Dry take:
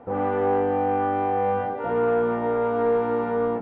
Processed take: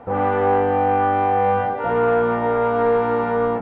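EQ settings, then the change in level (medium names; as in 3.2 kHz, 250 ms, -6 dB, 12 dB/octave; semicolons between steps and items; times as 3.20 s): peaking EQ 320 Hz -6.5 dB 1.7 oct; +8.0 dB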